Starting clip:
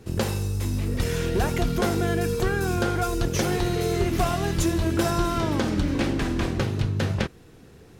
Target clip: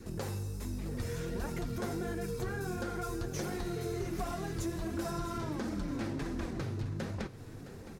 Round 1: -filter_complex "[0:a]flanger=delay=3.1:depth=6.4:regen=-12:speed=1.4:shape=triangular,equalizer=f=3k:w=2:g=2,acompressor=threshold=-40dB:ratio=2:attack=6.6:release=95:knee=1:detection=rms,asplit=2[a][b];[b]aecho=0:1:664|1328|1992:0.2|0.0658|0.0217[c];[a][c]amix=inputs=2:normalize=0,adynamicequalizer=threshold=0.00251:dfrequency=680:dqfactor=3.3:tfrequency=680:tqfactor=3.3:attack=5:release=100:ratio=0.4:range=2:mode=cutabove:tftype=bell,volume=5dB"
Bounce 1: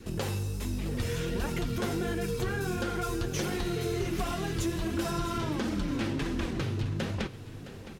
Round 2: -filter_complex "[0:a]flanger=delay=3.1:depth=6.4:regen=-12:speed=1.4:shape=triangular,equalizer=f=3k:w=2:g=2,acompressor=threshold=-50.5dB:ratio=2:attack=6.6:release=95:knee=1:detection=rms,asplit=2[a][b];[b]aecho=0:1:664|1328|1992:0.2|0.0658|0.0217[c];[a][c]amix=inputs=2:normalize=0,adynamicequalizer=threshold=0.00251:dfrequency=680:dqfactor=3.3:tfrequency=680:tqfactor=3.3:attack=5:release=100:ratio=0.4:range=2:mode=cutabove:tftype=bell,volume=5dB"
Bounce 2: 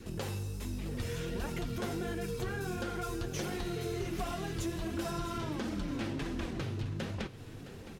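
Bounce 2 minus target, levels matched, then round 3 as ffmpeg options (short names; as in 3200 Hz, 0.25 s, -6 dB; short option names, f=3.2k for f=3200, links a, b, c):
4000 Hz band +4.0 dB
-filter_complex "[0:a]flanger=delay=3.1:depth=6.4:regen=-12:speed=1.4:shape=triangular,equalizer=f=3k:w=2:g=-6.5,acompressor=threshold=-50.5dB:ratio=2:attack=6.6:release=95:knee=1:detection=rms,asplit=2[a][b];[b]aecho=0:1:664|1328|1992:0.2|0.0658|0.0217[c];[a][c]amix=inputs=2:normalize=0,adynamicequalizer=threshold=0.00251:dfrequency=680:dqfactor=3.3:tfrequency=680:tqfactor=3.3:attack=5:release=100:ratio=0.4:range=2:mode=cutabove:tftype=bell,volume=5dB"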